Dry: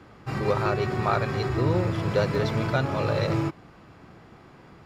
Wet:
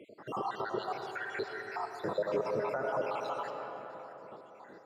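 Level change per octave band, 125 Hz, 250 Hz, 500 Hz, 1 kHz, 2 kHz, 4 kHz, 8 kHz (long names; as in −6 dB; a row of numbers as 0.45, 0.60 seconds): −26.0 dB, −15.5 dB, −8.0 dB, −6.0 dB, −8.0 dB, −11.5 dB, can't be measured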